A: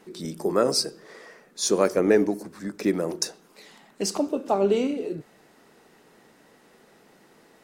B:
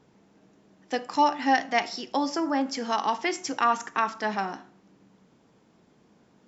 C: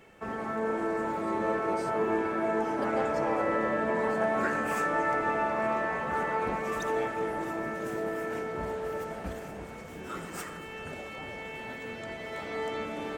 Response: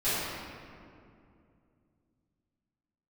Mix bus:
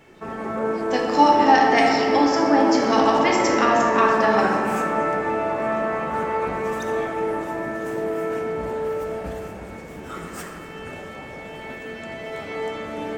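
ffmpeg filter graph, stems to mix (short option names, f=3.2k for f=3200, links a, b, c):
-filter_complex "[0:a]lowpass=f=3.1k:w=0.5412,lowpass=f=3.1k:w=1.3066,volume=-13.5dB[a];[1:a]volume=1dB,asplit=2[b][c];[c]volume=-7.5dB[d];[2:a]volume=2dB,asplit=2[e][f];[f]volume=-14dB[g];[3:a]atrim=start_sample=2205[h];[d][g]amix=inputs=2:normalize=0[i];[i][h]afir=irnorm=-1:irlink=0[j];[a][b][e][j]amix=inputs=4:normalize=0"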